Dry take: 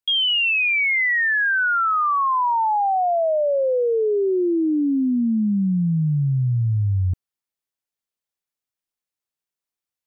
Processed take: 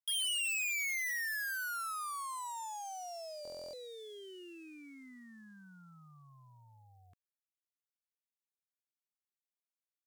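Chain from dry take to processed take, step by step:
running median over 9 samples
harmonic generator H 2 −44 dB, 5 −42 dB, 6 −43 dB, 8 −25 dB, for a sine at −16.5 dBFS
first difference
buffer that repeats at 0:03.43, samples 1,024, times 12
level −5.5 dB

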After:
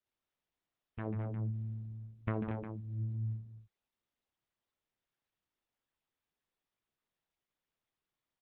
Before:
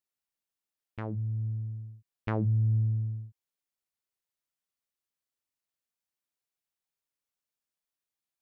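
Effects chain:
high-shelf EQ 2,200 Hz −9 dB
compressor whose output falls as the input rises −30 dBFS, ratio −0.5
multi-tap delay 60/142/206/232/356 ms −17/−10/−7.5/−8.5/−11.5 dB
level −3 dB
Opus 8 kbit/s 48,000 Hz

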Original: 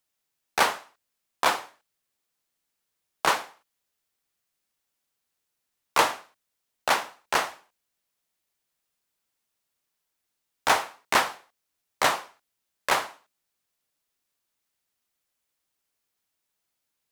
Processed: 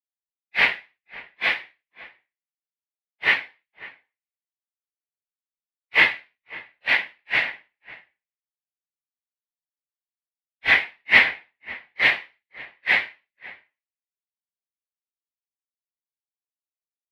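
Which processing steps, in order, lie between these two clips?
random phases in long frames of 100 ms
drawn EQ curve 130 Hz 0 dB, 1,300 Hz −11 dB, 2,000 Hz +14 dB, 4,400 Hz −5 dB, 7,100 Hz −28 dB, 11,000 Hz −22 dB
slap from a distant wall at 94 metres, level −8 dB
multiband upward and downward expander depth 100%
level −3 dB

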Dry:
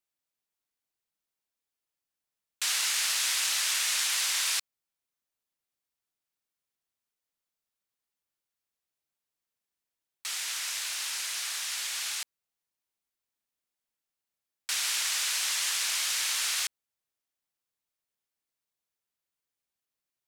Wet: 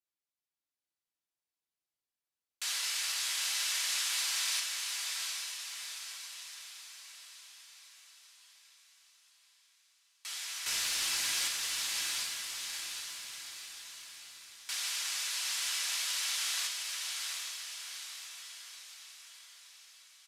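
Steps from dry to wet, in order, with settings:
0:10.66–0:11.48: leveller curve on the samples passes 3
feedback delay with all-pass diffusion 795 ms, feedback 52%, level −3.5 dB
downsampling to 32,000 Hz
on a send at −10 dB: parametric band 4,100 Hz +11 dB 1.9 octaves + convolution reverb RT60 0.45 s, pre-delay 3 ms
on the sum: level −8 dB

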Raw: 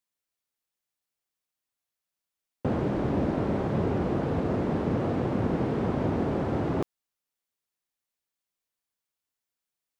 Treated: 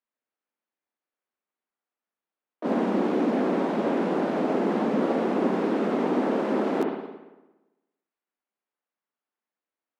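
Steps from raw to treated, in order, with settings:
Butterworth high-pass 190 Hz 48 dB per octave
high-shelf EQ 2,900 Hz +2.5 dB
spring reverb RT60 1.1 s, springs 57 ms, chirp 60 ms, DRR 1 dB
low-pass that shuts in the quiet parts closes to 1,600 Hz, open at −27 dBFS
pitch-shifted copies added +3 semitones −4 dB

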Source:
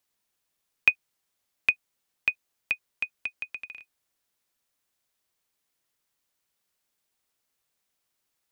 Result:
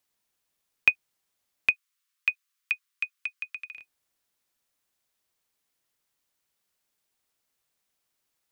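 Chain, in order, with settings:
0:01.71–0:03.75: elliptic high-pass filter 1,100 Hz, stop band 40 dB

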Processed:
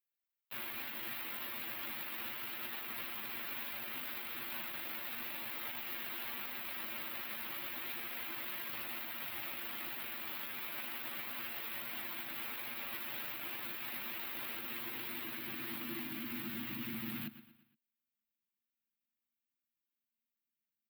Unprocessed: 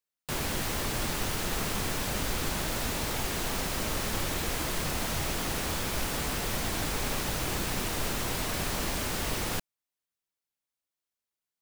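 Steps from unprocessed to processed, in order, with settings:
low-shelf EQ 310 Hz +10.5 dB
on a send: repeating echo 65 ms, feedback 49%, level −21 dB
on the sum: high-pass filter sweep 520 Hz → 220 Hz, 0:07.92–0:09.44
drawn EQ curve 300 Hz 0 dB, 460 Hz −19 dB, 1,100 Hz −2 dB, 2,400 Hz +6 dB, 3,800 Hz +1 dB, 7,600 Hz −24 dB, 14,000 Hz +11 dB
brickwall limiter −28.5 dBFS, peak gain reduction 13 dB
time stretch by overlap-add 1.8×, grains 39 ms
soft clipping −29.5 dBFS, distortion −23 dB
notch filter 6,200 Hz, Q 9.2
expander for the loud parts 1.5 to 1, over −51 dBFS
level −1.5 dB

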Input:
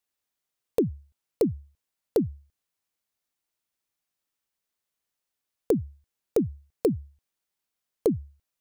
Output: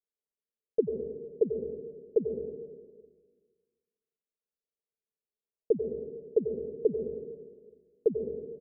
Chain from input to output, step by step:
transistor ladder low-pass 530 Hz, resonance 70%
comb filter 4.8 ms, depth 72%
dense smooth reverb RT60 1.6 s, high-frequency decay 0.95×, pre-delay 80 ms, DRR 3.5 dB
level −3.5 dB

